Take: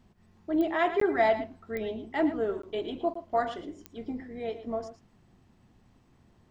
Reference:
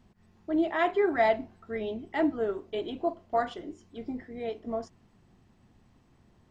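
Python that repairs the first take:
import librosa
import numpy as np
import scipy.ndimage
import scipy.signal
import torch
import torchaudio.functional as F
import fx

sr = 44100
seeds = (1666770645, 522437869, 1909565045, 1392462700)

y = fx.fix_declick_ar(x, sr, threshold=10.0)
y = fx.fix_interpolate(y, sr, at_s=(1.0, 2.62, 3.14), length_ms=14.0)
y = fx.fix_echo_inverse(y, sr, delay_ms=112, level_db=-12.0)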